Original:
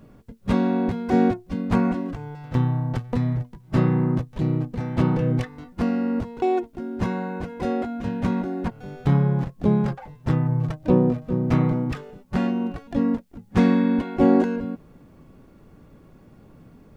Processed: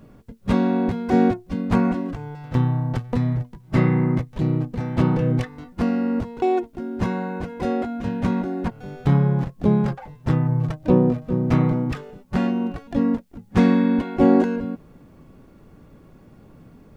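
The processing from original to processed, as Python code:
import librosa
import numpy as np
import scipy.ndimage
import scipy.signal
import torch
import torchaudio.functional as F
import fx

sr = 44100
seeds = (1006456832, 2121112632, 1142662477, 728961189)

y = fx.peak_eq(x, sr, hz=2100.0, db=11.0, octaves=0.22, at=(3.75, 4.3))
y = y * librosa.db_to_amplitude(1.5)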